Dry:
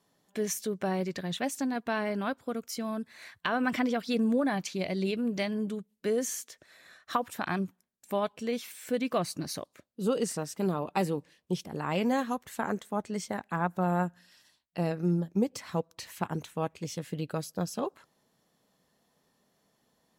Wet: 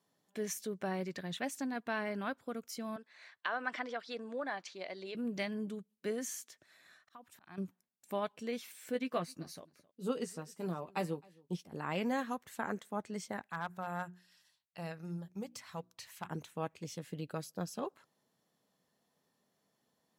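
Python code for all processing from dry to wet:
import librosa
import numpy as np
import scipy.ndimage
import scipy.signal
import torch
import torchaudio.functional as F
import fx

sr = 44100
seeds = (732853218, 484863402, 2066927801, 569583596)

y = fx.chain(x, sr, fx.bandpass_edges(low_hz=500.0, high_hz=5200.0),
    fx.dynamic_eq(hz=2500.0, q=2.4, threshold_db=-50.0, ratio=4.0, max_db=-5), at=(2.96, 5.15))
y = fx.chain(y, sr, fx.peak_eq(hz=490.0, db=-5.5, octaves=0.47),
    fx.auto_swell(attack_ms=663.0), at=(6.11, 7.58))
y = fx.chain(y, sr, fx.doubler(ms=12.0, db=-7.0),
    fx.echo_single(ms=264, db=-21.0),
    fx.upward_expand(threshold_db=-36.0, expansion=1.5), at=(8.94, 11.72))
y = fx.chain(y, sr, fx.peak_eq(hz=320.0, db=-11.5, octaves=1.7),
    fx.hum_notches(base_hz=60, count=6),
    fx.overload_stage(gain_db=25.5), at=(13.46, 16.29))
y = scipy.signal.sosfilt(scipy.signal.butter(2, 86.0, 'highpass', fs=sr, output='sos'), y)
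y = fx.dynamic_eq(y, sr, hz=1800.0, q=1.2, threshold_db=-44.0, ratio=4.0, max_db=4)
y = F.gain(torch.from_numpy(y), -7.0).numpy()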